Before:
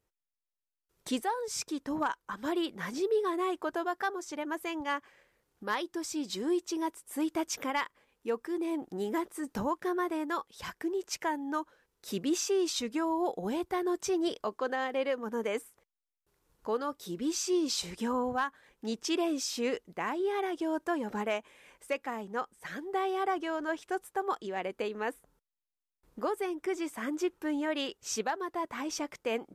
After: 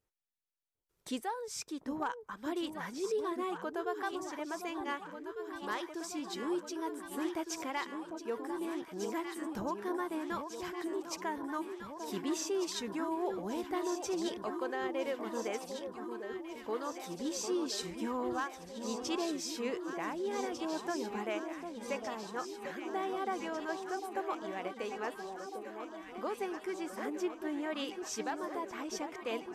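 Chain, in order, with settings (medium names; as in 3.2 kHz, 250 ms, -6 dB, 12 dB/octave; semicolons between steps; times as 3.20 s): echo whose repeats swap between lows and highs 749 ms, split 1.1 kHz, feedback 83%, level -6.5 dB; trim -5.5 dB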